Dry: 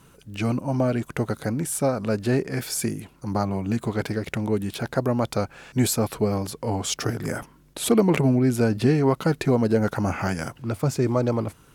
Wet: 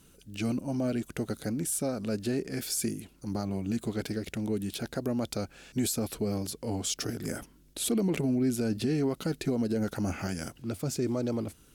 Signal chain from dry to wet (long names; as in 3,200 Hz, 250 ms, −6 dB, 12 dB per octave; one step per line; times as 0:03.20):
octave-band graphic EQ 125/500/1,000/2,000 Hz −9/−4/−12/−5 dB
brickwall limiter −19.5 dBFS, peak gain reduction 8 dB
level −1 dB